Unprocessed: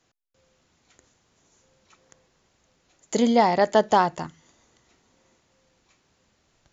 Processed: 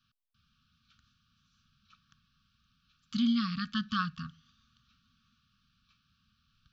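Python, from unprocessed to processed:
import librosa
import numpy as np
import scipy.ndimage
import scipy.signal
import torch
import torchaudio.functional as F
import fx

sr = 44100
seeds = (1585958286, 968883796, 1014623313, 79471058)

y = fx.brickwall_bandstop(x, sr, low_hz=260.0, high_hz=1100.0)
y = fx.fixed_phaser(y, sr, hz=2000.0, stages=6)
y = y * 10.0 ** (-2.0 / 20.0)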